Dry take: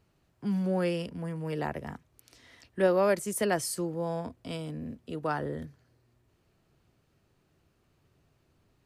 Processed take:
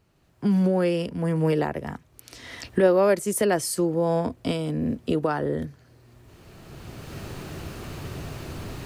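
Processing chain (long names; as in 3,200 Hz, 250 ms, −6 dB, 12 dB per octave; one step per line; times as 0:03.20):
camcorder AGC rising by 16 dB per second
dynamic equaliser 380 Hz, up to +4 dB, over −37 dBFS, Q 1
level +3 dB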